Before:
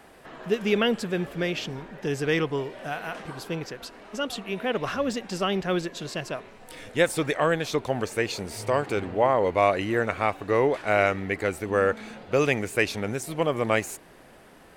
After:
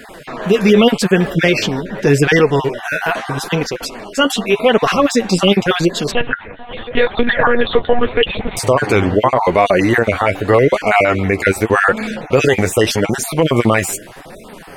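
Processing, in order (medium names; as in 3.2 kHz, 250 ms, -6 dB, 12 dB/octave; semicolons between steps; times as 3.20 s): random holes in the spectrogram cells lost 27%; 6.11–8.57 s: monotone LPC vocoder at 8 kHz 240 Hz; flange 0.83 Hz, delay 3.9 ms, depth 7.6 ms, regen +32%; loudness maximiser +21.5 dB; trim -1 dB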